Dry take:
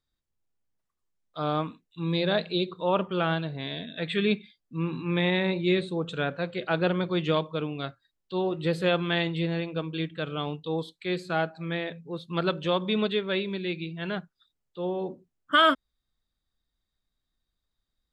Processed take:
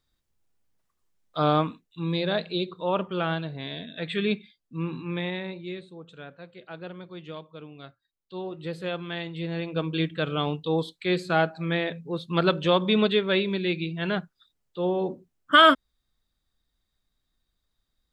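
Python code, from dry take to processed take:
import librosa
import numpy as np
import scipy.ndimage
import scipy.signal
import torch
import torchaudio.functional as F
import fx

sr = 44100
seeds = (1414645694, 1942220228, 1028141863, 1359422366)

y = fx.gain(x, sr, db=fx.line((1.4, 7.0), (2.22, -1.0), (4.92, -1.0), (5.86, -14.0), (7.36, -14.0), (8.34, -7.0), (9.28, -7.0), (9.86, 4.5)))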